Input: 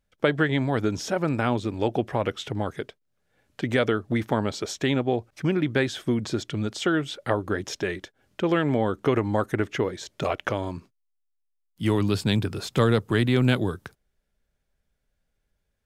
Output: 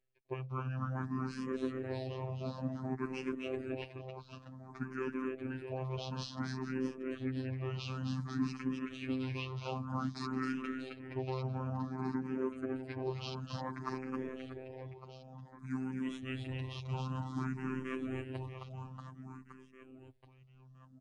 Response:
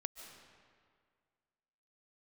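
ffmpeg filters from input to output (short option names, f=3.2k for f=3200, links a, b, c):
-filter_complex "[0:a]highshelf=f=3.7k:g=-7.5,areverse,acompressor=threshold=-32dB:ratio=5,areverse,aecho=1:1:200|480|872|1421|2189:0.631|0.398|0.251|0.158|0.1,afftfilt=real='hypot(re,im)*cos(PI*b)':imag='0':win_size=1024:overlap=0.75,asetrate=33296,aresample=44100,aresample=22050,aresample=44100,asplit=2[a][b];[b]afreqshift=0.55[c];[a][c]amix=inputs=2:normalize=1,volume=2.5dB"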